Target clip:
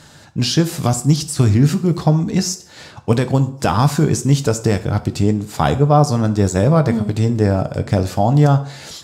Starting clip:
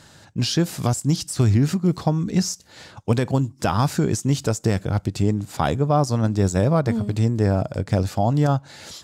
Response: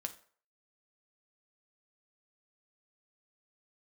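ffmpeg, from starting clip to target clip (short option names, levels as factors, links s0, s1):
-filter_complex "[0:a]asplit=2[s0][s1];[1:a]atrim=start_sample=2205,asetrate=33075,aresample=44100[s2];[s1][s2]afir=irnorm=-1:irlink=0,volume=2.37[s3];[s0][s3]amix=inputs=2:normalize=0,volume=0.531"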